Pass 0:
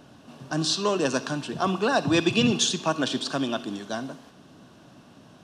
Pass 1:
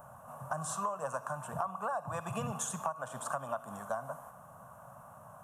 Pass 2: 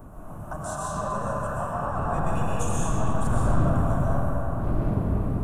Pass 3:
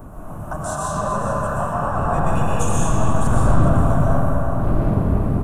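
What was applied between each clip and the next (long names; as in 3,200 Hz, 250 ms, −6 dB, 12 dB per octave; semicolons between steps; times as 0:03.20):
drawn EQ curve 130 Hz 0 dB, 210 Hz −8 dB, 330 Hz −28 dB, 560 Hz +4 dB, 1,200 Hz +10 dB, 1,800 Hz −7 dB, 4,600 Hz −28 dB, 7,100 Hz −1 dB, 12,000 Hz +13 dB; downward compressor 16 to 1, threshold −30 dBFS, peak gain reduction 18 dB; level −2 dB
wind on the microphone 150 Hz −34 dBFS; convolution reverb RT60 4.3 s, pre-delay 85 ms, DRR −7.5 dB; level −1 dB
single-tap delay 411 ms −13 dB; level +6.5 dB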